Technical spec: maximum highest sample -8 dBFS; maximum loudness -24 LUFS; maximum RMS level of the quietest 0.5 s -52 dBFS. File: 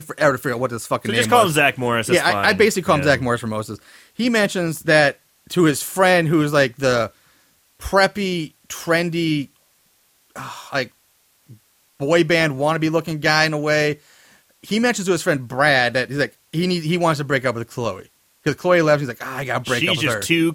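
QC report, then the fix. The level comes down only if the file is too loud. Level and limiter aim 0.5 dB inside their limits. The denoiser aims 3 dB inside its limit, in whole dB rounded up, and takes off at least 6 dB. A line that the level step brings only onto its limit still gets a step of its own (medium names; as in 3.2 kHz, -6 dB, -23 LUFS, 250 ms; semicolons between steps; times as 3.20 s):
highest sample -3.0 dBFS: fail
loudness -18.5 LUFS: fail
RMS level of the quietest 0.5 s -60 dBFS: pass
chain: trim -6 dB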